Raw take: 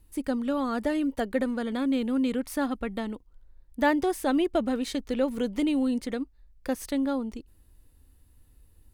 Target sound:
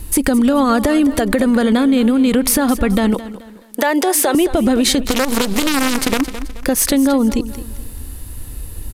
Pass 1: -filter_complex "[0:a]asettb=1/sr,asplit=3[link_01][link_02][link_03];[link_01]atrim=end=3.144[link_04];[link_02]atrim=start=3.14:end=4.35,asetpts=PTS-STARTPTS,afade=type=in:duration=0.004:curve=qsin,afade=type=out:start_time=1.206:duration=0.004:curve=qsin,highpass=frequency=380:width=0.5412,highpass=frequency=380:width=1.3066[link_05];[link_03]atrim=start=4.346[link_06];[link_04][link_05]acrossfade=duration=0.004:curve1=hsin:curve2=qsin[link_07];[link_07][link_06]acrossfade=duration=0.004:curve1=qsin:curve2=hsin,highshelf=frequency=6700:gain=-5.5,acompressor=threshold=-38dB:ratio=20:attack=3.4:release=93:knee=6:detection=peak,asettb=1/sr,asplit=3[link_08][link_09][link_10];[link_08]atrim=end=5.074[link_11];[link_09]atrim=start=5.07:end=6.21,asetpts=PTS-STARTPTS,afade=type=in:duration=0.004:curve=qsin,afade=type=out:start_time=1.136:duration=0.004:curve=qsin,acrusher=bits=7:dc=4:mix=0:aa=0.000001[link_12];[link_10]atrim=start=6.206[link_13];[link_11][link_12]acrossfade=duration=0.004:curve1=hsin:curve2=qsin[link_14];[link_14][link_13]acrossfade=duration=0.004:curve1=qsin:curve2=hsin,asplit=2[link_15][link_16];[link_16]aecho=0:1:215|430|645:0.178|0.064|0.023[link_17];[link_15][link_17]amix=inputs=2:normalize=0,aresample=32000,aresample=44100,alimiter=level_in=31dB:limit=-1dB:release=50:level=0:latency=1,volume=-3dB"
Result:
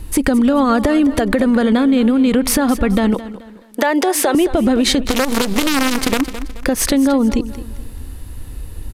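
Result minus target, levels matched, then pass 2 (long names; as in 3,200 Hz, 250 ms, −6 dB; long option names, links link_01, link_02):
8,000 Hz band −2.5 dB
-filter_complex "[0:a]asettb=1/sr,asplit=3[link_01][link_02][link_03];[link_01]atrim=end=3.144[link_04];[link_02]atrim=start=3.14:end=4.35,asetpts=PTS-STARTPTS,afade=type=in:duration=0.004:curve=qsin,afade=type=out:start_time=1.206:duration=0.004:curve=qsin,highpass=frequency=380:width=0.5412,highpass=frequency=380:width=1.3066[link_05];[link_03]atrim=start=4.346[link_06];[link_04][link_05]acrossfade=duration=0.004:curve1=hsin:curve2=qsin[link_07];[link_07][link_06]acrossfade=duration=0.004:curve1=qsin:curve2=hsin,highshelf=frequency=6700:gain=6,acompressor=threshold=-38dB:ratio=20:attack=3.4:release=93:knee=6:detection=peak,asettb=1/sr,asplit=3[link_08][link_09][link_10];[link_08]atrim=end=5.074[link_11];[link_09]atrim=start=5.07:end=6.21,asetpts=PTS-STARTPTS,afade=type=in:duration=0.004:curve=qsin,afade=type=out:start_time=1.136:duration=0.004:curve=qsin,acrusher=bits=7:dc=4:mix=0:aa=0.000001[link_12];[link_10]atrim=start=6.206[link_13];[link_11][link_12]acrossfade=duration=0.004:curve1=hsin:curve2=qsin[link_14];[link_14][link_13]acrossfade=duration=0.004:curve1=qsin:curve2=hsin,asplit=2[link_15][link_16];[link_16]aecho=0:1:215|430|645:0.178|0.064|0.023[link_17];[link_15][link_17]amix=inputs=2:normalize=0,aresample=32000,aresample=44100,alimiter=level_in=31dB:limit=-1dB:release=50:level=0:latency=1,volume=-3dB"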